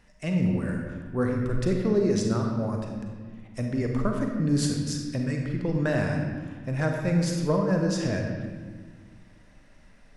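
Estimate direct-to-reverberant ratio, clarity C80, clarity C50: 1.5 dB, 4.0 dB, 2.5 dB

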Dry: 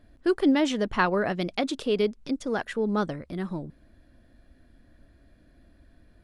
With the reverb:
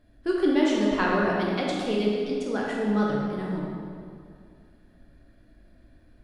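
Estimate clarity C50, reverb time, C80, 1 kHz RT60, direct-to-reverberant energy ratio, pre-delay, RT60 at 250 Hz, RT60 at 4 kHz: -1.0 dB, 2.2 s, 0.5 dB, 2.2 s, -4.0 dB, 11 ms, 2.4 s, 1.5 s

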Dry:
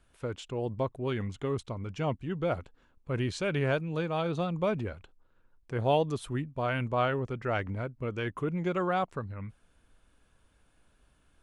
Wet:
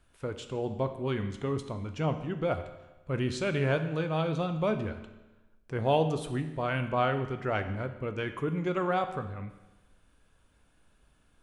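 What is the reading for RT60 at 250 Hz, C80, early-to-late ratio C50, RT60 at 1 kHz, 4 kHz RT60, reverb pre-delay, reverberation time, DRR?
1.1 s, 12.0 dB, 10.5 dB, 1.1 s, 1.0 s, 13 ms, 1.1 s, 8.0 dB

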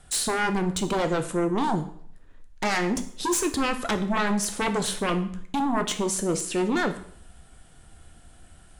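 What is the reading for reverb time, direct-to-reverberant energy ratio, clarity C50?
0.60 s, 7.0 dB, 12.5 dB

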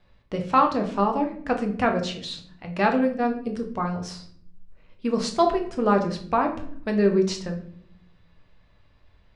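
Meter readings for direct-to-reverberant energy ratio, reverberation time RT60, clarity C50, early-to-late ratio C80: 3.0 dB, 0.60 s, 10.0 dB, 13.5 dB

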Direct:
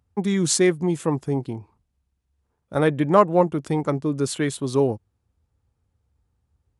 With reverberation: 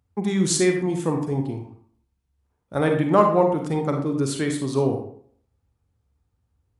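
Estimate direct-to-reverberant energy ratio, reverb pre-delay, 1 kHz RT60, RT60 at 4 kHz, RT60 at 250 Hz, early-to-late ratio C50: 3.5 dB, 36 ms, 0.55 s, 0.40 s, 0.55 s, 5.5 dB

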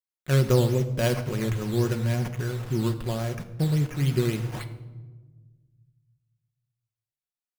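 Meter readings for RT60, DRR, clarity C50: 1.3 s, 6.0 dB, 12.5 dB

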